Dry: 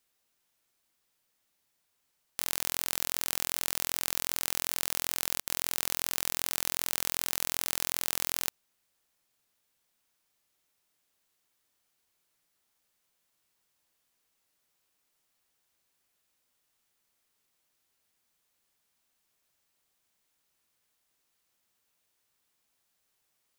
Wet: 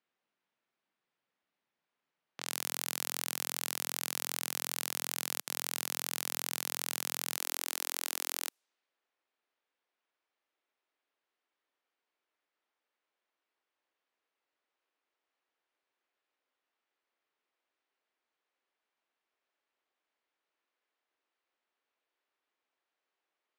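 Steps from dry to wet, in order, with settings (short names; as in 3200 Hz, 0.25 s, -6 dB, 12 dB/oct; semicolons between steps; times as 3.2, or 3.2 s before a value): HPF 140 Hz 24 dB/oct, from 7.38 s 290 Hz; low-pass opened by the level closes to 2500 Hz, open at -38 dBFS; gain -3 dB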